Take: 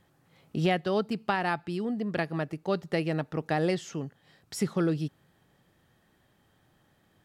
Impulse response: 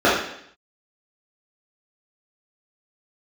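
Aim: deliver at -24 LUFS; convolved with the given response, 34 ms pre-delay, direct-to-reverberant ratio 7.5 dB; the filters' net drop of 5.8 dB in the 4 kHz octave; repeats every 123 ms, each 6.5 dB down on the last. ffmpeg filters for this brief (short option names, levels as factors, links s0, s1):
-filter_complex "[0:a]equalizer=f=4000:t=o:g=-8.5,aecho=1:1:123|246|369|492|615|738:0.473|0.222|0.105|0.0491|0.0231|0.0109,asplit=2[s0][s1];[1:a]atrim=start_sample=2205,adelay=34[s2];[s1][s2]afir=irnorm=-1:irlink=0,volume=0.0237[s3];[s0][s3]amix=inputs=2:normalize=0,volume=1.68"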